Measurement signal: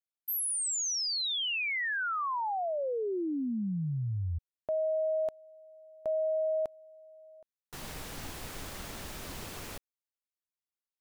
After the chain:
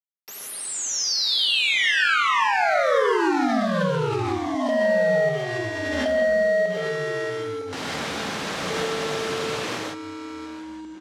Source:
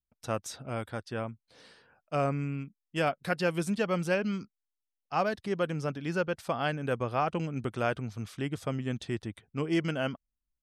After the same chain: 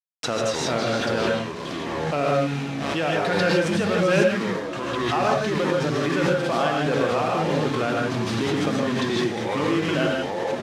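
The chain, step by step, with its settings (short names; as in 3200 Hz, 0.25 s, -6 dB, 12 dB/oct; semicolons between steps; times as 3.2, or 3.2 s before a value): outdoor echo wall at 110 m, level -27 dB; compressor 6:1, threshold -33 dBFS; sample leveller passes 2; buzz 400 Hz, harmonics 36, -60 dBFS -4 dB/oct; bit-crush 7-bit; echoes that change speed 0.137 s, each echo -6 st, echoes 3, each echo -6 dB; BPF 210–5000 Hz; non-linear reverb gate 0.18 s rising, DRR -1.5 dB; backwards sustainer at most 21 dB/s; gain +5.5 dB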